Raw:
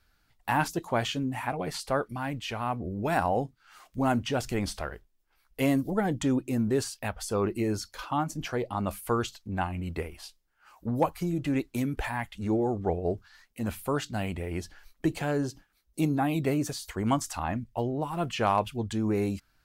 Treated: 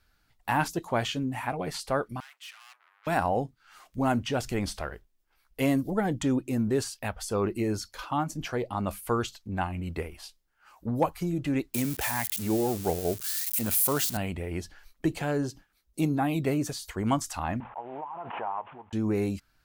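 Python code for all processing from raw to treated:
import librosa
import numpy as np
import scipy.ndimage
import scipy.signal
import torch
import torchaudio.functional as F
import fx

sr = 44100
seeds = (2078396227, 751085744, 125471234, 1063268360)

y = fx.chain(x, sr, fx.tube_stage(drive_db=41.0, bias=0.45),
    fx.highpass(hz=1300.0, slope=24), at=(2.2, 3.07))
y = fx.chain(y, sr, fx.crossing_spikes(level_db=-28.5),
    fx.highpass(hz=82.0, slope=12),
    fx.high_shelf(hz=4100.0, db=8.0), at=(11.74, 14.17))
y = fx.chain(y, sr, fx.cvsd(bps=16000),
    fx.bandpass_q(hz=890.0, q=4.2),
    fx.pre_swell(db_per_s=40.0), at=(17.6, 18.93))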